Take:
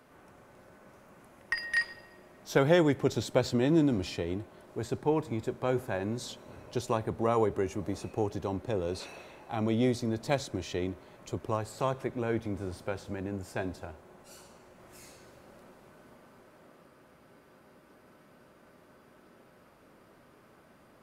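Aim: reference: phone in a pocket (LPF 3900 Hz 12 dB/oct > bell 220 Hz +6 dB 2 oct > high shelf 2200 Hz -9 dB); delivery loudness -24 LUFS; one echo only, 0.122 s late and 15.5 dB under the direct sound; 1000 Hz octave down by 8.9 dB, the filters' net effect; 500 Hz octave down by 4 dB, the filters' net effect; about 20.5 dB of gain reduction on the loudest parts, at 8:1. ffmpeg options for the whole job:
-af "equalizer=f=500:t=o:g=-7,equalizer=f=1k:t=o:g=-8.5,acompressor=threshold=-46dB:ratio=8,lowpass=3.9k,equalizer=f=220:t=o:w=2:g=6,highshelf=f=2.2k:g=-9,aecho=1:1:122:0.168,volume=25dB"

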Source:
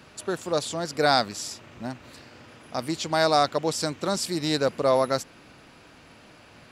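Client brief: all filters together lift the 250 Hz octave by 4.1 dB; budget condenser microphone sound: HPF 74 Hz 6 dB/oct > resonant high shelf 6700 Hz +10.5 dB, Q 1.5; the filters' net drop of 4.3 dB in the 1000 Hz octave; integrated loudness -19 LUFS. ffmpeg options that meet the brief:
-af "highpass=f=74:p=1,equalizer=f=250:t=o:g=6.5,equalizer=f=1k:t=o:g=-7,highshelf=f=6.7k:t=q:w=1.5:g=10.5,volume=6.5dB"

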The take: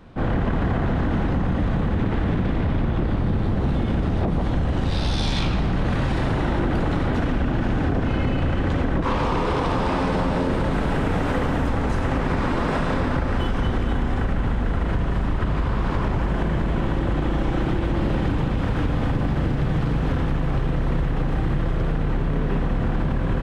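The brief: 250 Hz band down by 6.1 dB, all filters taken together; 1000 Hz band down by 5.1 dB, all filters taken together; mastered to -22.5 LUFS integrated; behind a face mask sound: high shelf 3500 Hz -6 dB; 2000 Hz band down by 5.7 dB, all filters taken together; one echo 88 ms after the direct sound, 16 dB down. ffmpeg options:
-af "equalizer=f=250:t=o:g=-8.5,equalizer=f=1k:t=o:g=-4.5,equalizer=f=2k:t=o:g=-4,highshelf=f=3.5k:g=-6,aecho=1:1:88:0.158,volume=4dB"

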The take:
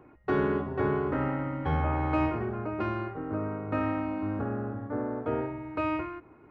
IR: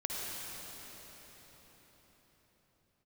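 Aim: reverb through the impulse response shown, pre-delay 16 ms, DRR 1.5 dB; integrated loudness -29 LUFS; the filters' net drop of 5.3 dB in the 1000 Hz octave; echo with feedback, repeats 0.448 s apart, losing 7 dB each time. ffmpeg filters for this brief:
-filter_complex "[0:a]equalizer=f=1k:t=o:g=-7,aecho=1:1:448|896|1344|1792|2240:0.447|0.201|0.0905|0.0407|0.0183,asplit=2[a][b];[1:a]atrim=start_sample=2205,adelay=16[c];[b][c]afir=irnorm=-1:irlink=0,volume=-6dB[d];[a][d]amix=inputs=2:normalize=0,volume=-1dB"

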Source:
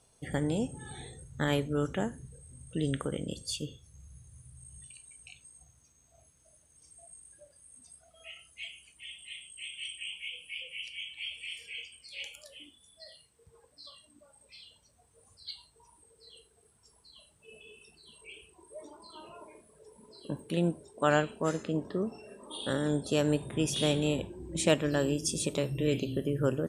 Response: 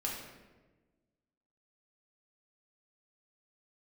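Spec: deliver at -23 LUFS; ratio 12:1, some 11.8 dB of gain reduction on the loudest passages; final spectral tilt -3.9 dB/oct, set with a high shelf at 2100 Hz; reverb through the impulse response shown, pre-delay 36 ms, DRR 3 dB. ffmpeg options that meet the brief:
-filter_complex "[0:a]highshelf=f=2.1k:g=3.5,acompressor=threshold=-31dB:ratio=12,asplit=2[a][b];[1:a]atrim=start_sample=2205,adelay=36[c];[b][c]afir=irnorm=-1:irlink=0,volume=-6dB[d];[a][d]amix=inputs=2:normalize=0,volume=14.5dB"

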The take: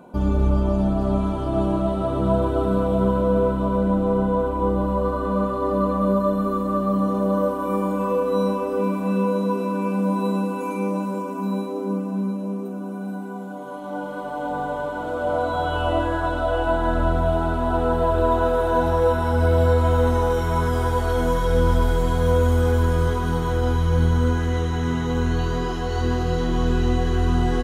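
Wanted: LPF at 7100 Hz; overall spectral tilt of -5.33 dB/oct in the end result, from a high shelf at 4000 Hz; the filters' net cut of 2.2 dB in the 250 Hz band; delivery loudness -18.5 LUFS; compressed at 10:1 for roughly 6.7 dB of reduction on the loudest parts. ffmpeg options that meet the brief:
-af "lowpass=7.1k,equalizer=f=250:t=o:g=-3,highshelf=f=4k:g=-3.5,acompressor=threshold=-21dB:ratio=10,volume=8.5dB"

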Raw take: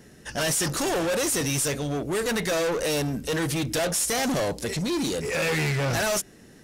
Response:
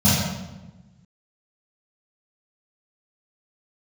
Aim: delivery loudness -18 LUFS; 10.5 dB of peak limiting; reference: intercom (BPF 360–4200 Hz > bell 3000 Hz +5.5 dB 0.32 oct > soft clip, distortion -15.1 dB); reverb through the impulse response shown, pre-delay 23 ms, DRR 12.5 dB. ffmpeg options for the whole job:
-filter_complex "[0:a]alimiter=level_in=3.5dB:limit=-24dB:level=0:latency=1,volume=-3.5dB,asplit=2[a][b];[1:a]atrim=start_sample=2205,adelay=23[c];[b][c]afir=irnorm=-1:irlink=0,volume=-31.5dB[d];[a][d]amix=inputs=2:normalize=0,highpass=360,lowpass=4.2k,equalizer=f=3k:t=o:w=0.32:g=5.5,asoftclip=threshold=-28.5dB,volume=18dB"

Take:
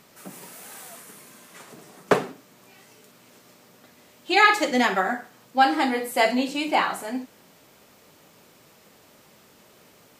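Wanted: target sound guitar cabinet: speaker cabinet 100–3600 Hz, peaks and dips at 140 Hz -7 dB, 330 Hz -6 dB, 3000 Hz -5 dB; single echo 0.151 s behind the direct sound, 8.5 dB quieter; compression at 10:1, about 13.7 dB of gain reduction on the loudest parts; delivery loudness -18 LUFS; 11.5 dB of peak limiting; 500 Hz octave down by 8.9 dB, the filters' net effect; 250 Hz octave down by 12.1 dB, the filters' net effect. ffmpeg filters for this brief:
-af "equalizer=f=250:t=o:g=-8.5,equalizer=f=500:t=o:g=-9,acompressor=threshold=-26dB:ratio=10,alimiter=level_in=0.5dB:limit=-24dB:level=0:latency=1,volume=-0.5dB,highpass=100,equalizer=f=140:t=q:w=4:g=-7,equalizer=f=330:t=q:w=4:g=-6,equalizer=f=3k:t=q:w=4:g=-5,lowpass=f=3.6k:w=0.5412,lowpass=f=3.6k:w=1.3066,aecho=1:1:151:0.376,volume=19.5dB"

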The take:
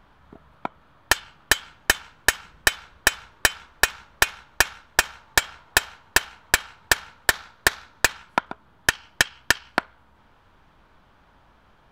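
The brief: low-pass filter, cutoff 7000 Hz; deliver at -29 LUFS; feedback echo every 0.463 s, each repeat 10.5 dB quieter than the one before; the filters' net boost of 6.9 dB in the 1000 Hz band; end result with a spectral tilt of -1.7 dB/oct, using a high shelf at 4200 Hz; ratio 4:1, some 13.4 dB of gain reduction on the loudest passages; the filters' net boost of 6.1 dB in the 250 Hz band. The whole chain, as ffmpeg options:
-af "lowpass=7k,equalizer=f=250:t=o:g=7.5,equalizer=f=1k:t=o:g=8,highshelf=f=4.2k:g=5,acompressor=threshold=-30dB:ratio=4,aecho=1:1:463|926|1389:0.299|0.0896|0.0269,volume=6.5dB"

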